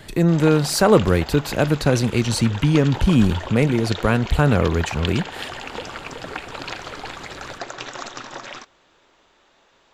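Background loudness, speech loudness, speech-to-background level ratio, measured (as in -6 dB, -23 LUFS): -33.0 LUFS, -19.0 LUFS, 14.0 dB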